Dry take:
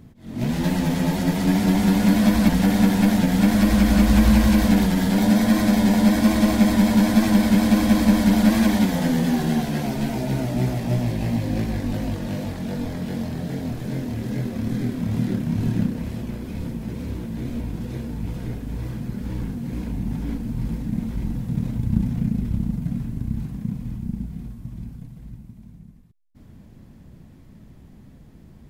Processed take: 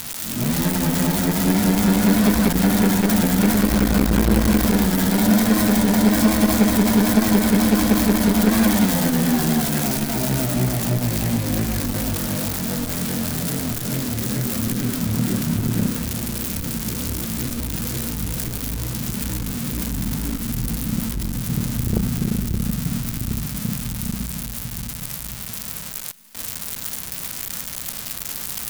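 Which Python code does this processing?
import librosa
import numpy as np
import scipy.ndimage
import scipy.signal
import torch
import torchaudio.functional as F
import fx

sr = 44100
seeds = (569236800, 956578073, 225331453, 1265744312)

p1 = x + 0.5 * 10.0 ** (-15.0 / 20.0) * np.diff(np.sign(x), prepend=np.sign(x[:1]))
p2 = p1 + fx.echo_thinned(p1, sr, ms=709, feedback_pct=83, hz=320.0, wet_db=-23.0, dry=0)
p3 = fx.dynamic_eq(p2, sr, hz=1300.0, q=2.8, threshold_db=-47.0, ratio=4.0, max_db=5)
p4 = fx.transformer_sat(p3, sr, knee_hz=290.0)
y = p4 * 10.0 ** (2.0 / 20.0)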